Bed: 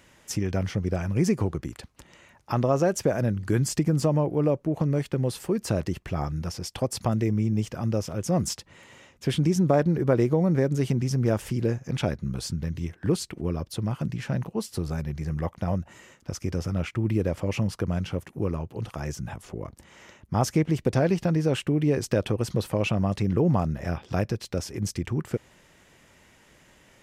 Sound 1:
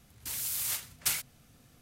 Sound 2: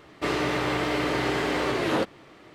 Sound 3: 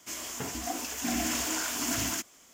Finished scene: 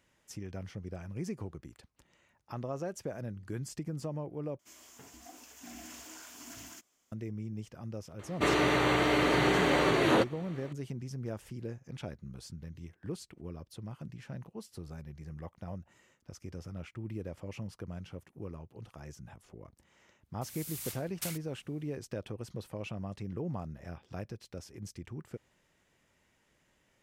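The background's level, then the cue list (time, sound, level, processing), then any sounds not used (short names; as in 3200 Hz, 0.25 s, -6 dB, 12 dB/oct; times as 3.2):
bed -15 dB
4.59 replace with 3 -17.5 dB
8.19 add 2 -0.5 dB + Butterworth band-stop 5100 Hz, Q 7.4
20.16 add 1 -9 dB + opening faded in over 0.59 s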